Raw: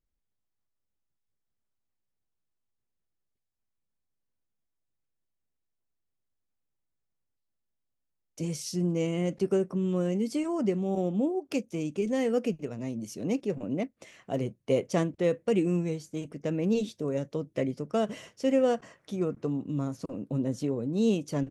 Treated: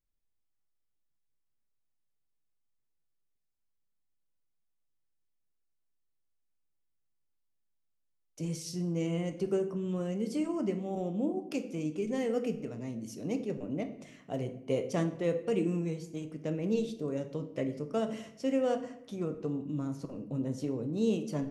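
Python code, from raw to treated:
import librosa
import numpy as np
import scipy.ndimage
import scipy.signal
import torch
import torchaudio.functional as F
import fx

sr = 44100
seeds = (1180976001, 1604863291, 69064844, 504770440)

y = fx.room_shoebox(x, sr, seeds[0], volume_m3=200.0, walls='mixed', distance_m=0.43)
y = F.gain(torch.from_numpy(y), -5.0).numpy()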